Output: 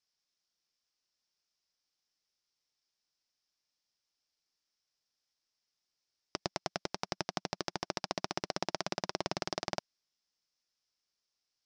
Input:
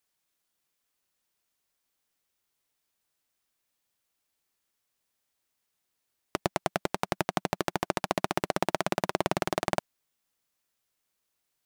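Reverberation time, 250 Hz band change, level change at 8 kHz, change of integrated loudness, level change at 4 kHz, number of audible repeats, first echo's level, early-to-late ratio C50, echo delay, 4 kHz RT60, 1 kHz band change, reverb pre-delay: no reverb, -9.0 dB, -4.0 dB, -7.0 dB, -1.0 dB, no echo, no echo, no reverb, no echo, no reverb, -9.0 dB, no reverb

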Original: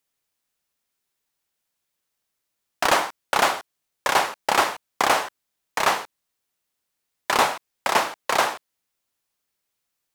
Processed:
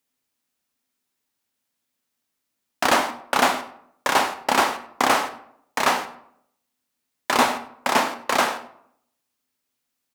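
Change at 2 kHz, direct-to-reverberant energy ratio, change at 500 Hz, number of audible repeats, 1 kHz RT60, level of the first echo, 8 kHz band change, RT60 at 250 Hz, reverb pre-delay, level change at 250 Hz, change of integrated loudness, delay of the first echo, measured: +0.5 dB, 8.5 dB, +1.0 dB, 1, 0.70 s, -19.0 dB, +0.5 dB, 0.80 s, 14 ms, +6.5 dB, +0.5 dB, 98 ms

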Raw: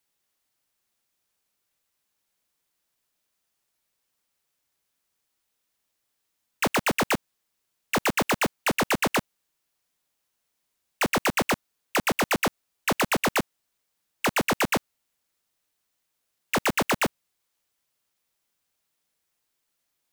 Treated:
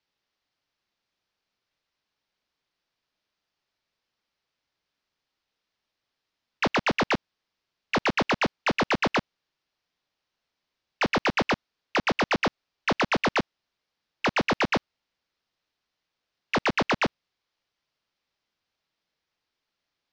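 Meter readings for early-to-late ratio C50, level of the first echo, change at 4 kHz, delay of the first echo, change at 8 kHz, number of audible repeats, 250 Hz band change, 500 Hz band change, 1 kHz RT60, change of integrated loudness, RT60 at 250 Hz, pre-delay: no reverb, no echo, -0.5 dB, no echo, -12.0 dB, no echo, 0.0 dB, 0.0 dB, no reverb, -0.5 dB, no reverb, no reverb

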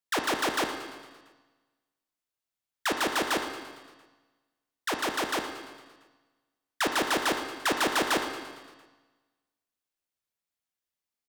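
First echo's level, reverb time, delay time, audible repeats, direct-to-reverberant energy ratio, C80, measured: -12.5 dB, 1.4 s, 114 ms, 6, 4.0 dB, 7.0 dB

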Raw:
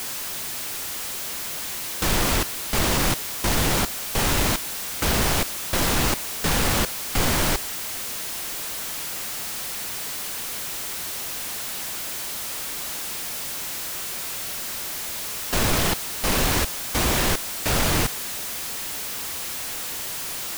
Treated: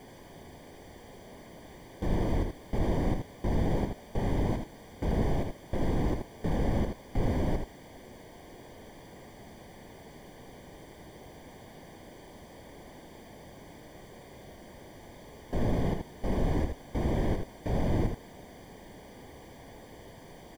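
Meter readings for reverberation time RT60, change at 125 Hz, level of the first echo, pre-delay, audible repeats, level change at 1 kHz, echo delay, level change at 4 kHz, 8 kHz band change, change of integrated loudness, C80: no reverb, -3.0 dB, -5.5 dB, no reverb, 1, -11.5 dB, 79 ms, -24.5 dB, -30.0 dB, -8.0 dB, no reverb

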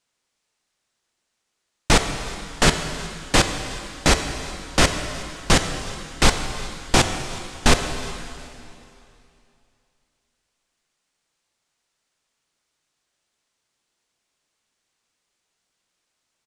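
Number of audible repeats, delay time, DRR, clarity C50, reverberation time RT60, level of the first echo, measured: 1, 367 ms, 6.5 dB, 7.5 dB, 2.7 s, -23.0 dB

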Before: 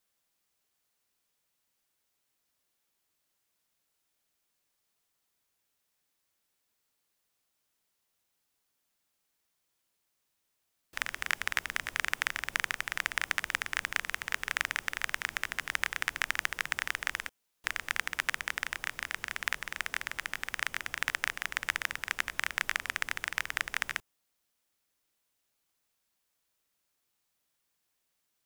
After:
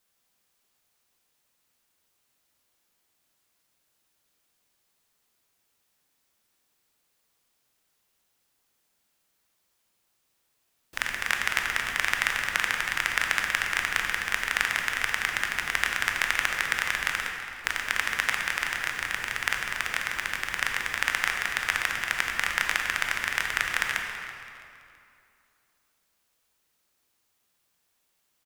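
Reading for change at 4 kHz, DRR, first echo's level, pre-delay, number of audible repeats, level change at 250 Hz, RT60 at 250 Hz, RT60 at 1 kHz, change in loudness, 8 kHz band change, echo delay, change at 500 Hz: +6.5 dB, 1.5 dB, -15.0 dB, 18 ms, 3, +7.0 dB, 2.7 s, 2.6 s, +6.5 dB, +6.0 dB, 330 ms, +7.0 dB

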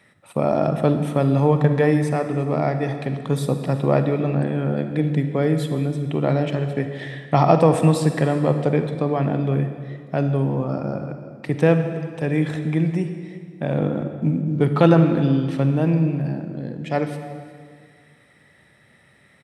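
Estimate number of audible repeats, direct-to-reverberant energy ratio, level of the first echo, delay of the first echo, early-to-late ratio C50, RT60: 1, 7.5 dB, -21.0 dB, 355 ms, 8.0 dB, 1.9 s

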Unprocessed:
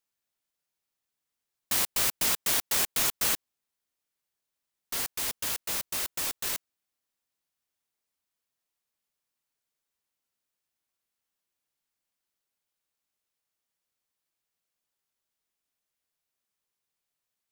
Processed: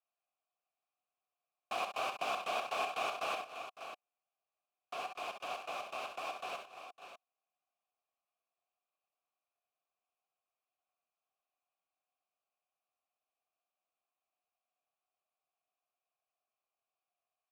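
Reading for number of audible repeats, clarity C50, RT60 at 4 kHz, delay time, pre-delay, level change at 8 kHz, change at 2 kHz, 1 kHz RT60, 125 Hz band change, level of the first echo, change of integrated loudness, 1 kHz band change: 5, no reverb, no reverb, 65 ms, no reverb, -25.0 dB, -6.0 dB, no reverb, under -15 dB, -7.5 dB, -12.5 dB, +3.0 dB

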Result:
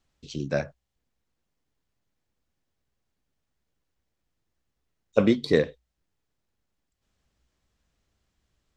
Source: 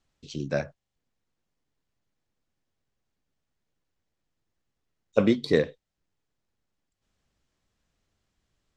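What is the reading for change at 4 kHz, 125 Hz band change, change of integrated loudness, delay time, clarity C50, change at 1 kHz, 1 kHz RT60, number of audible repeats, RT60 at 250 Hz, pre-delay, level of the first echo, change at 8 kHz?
+1.0 dB, +1.0 dB, +1.0 dB, no echo, no reverb, +1.0 dB, no reverb, no echo, no reverb, no reverb, no echo, no reading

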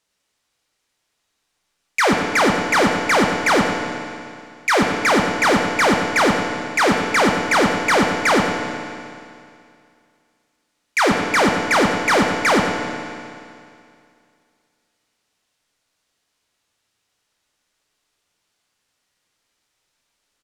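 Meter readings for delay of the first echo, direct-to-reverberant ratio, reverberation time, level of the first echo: 98 ms, 1.0 dB, 2.4 s, -10.0 dB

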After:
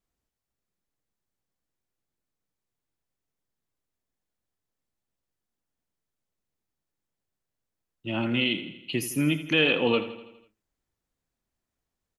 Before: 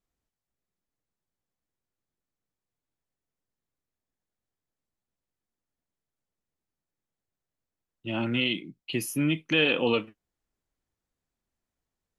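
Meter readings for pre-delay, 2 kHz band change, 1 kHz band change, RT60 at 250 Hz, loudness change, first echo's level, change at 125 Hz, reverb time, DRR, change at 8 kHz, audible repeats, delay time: no reverb, +1.5 dB, +1.5 dB, no reverb, +1.5 dB, -13.0 dB, +1.5 dB, no reverb, no reverb, +1.5 dB, 5, 82 ms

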